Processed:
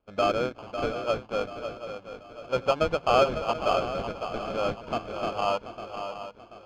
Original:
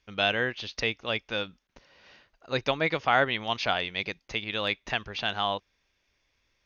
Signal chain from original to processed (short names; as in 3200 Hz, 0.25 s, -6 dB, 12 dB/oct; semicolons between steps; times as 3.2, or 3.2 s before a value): nonlinear frequency compression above 1500 Hz 1.5:1; bell 600 Hz +12.5 dB 0.79 oct; de-hum 53.81 Hz, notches 5; sample-rate reducer 1900 Hz, jitter 0%; air absorption 190 m; swung echo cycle 0.734 s, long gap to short 3:1, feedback 39%, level -9 dB; gain -3.5 dB